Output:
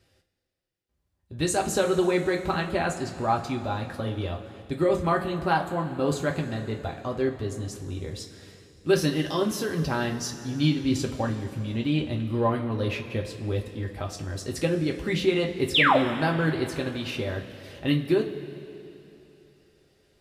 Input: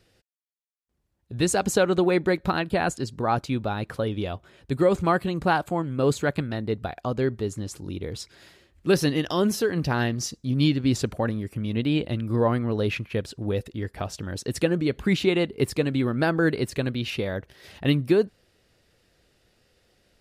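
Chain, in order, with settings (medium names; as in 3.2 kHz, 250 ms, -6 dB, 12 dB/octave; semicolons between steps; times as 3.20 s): painted sound fall, 15.74–15.98 s, 460–4000 Hz -17 dBFS; two-slope reverb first 0.22 s, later 3.1 s, from -18 dB, DRR 0.5 dB; trim -4.5 dB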